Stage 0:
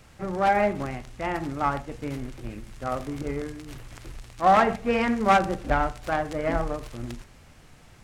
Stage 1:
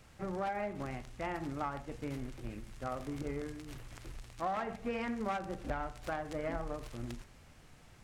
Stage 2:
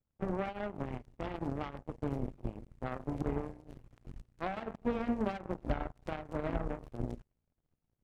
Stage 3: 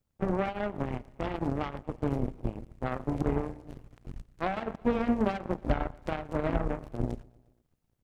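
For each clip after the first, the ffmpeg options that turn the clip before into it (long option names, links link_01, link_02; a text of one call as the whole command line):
ffmpeg -i in.wav -af "acompressor=threshold=-27dB:ratio=6,volume=-6.5dB" out.wav
ffmpeg -i in.wav -af "tiltshelf=frequency=910:gain=9,aeval=exprs='0.119*(cos(1*acos(clip(val(0)/0.119,-1,1)))-cos(1*PI/2))+0.0168*(cos(7*acos(clip(val(0)/0.119,-1,1)))-cos(7*PI/2))':channel_layout=same,volume=-1.5dB" out.wav
ffmpeg -i in.wav -af "aecho=1:1:118|236|354|472:0.0631|0.0379|0.0227|0.0136,volume=6dB" out.wav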